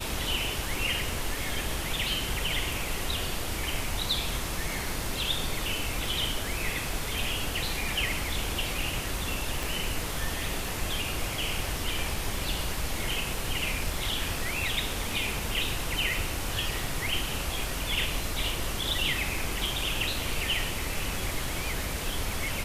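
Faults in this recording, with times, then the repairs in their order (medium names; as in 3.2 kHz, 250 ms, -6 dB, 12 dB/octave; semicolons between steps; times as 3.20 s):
crackle 27 per s -37 dBFS
9.63 s: pop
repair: de-click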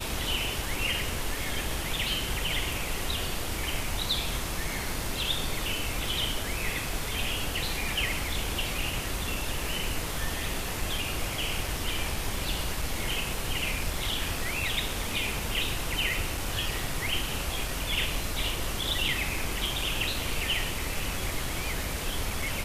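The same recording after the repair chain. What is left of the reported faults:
9.63 s: pop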